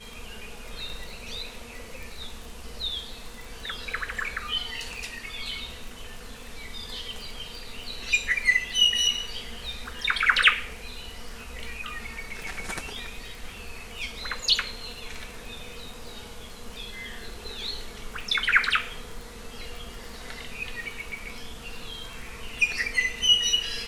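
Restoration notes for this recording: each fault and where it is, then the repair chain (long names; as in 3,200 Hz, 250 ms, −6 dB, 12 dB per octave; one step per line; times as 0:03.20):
surface crackle 22 per second −34 dBFS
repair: click removal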